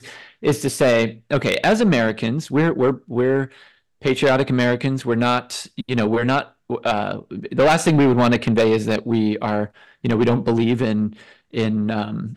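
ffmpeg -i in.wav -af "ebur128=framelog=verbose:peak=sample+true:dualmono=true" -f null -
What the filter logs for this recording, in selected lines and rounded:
Integrated loudness:
  I:         -16.5 LUFS
  Threshold: -26.8 LUFS
Loudness range:
  LRA:         2.6 LU
  Threshold: -36.7 LUFS
  LRA low:   -18.1 LUFS
  LRA high:  -15.6 LUFS
Sample peak:
  Peak:      -10.3 dBFS
True peak:
  Peak:      -10.2 dBFS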